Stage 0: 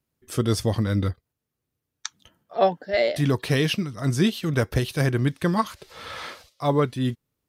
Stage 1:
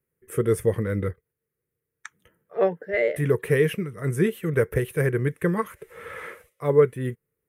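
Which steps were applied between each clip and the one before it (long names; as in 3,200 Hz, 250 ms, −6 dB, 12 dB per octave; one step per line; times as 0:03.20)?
drawn EQ curve 100 Hz 0 dB, 170 Hz +4 dB, 270 Hz −4 dB, 450 Hz +13 dB, 700 Hz −6 dB, 2,000 Hz +7 dB, 4,500 Hz −21 dB, 9,800 Hz +5 dB
level −4.5 dB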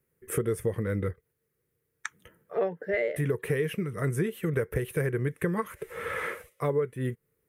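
downward compressor 5 to 1, threshold −31 dBFS, peak gain reduction 17.5 dB
level +5 dB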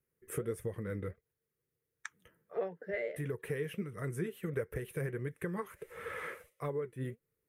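flanger 1.5 Hz, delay 0.5 ms, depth 7.4 ms, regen +72%
level −4.5 dB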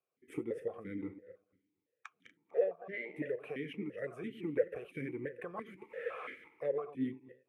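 feedback delay that plays each chunk backwards 120 ms, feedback 43%, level −12 dB
formant filter that steps through the vowels 5.9 Hz
level +11.5 dB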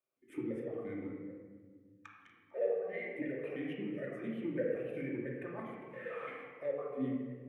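convolution reverb RT60 1.5 s, pre-delay 3 ms, DRR −3 dB
level −5 dB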